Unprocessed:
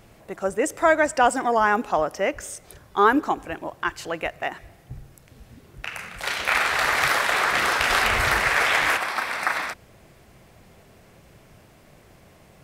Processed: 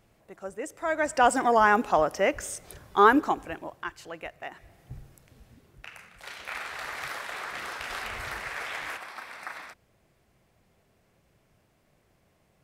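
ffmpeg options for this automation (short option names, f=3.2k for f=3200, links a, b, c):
-af "volume=6.5dB,afade=t=in:st=0.85:d=0.52:silence=0.251189,afade=t=out:st=3.05:d=0.88:silence=0.298538,afade=t=in:st=4.49:d=0.45:silence=0.446684,afade=t=out:st=4.94:d=1.14:silence=0.281838"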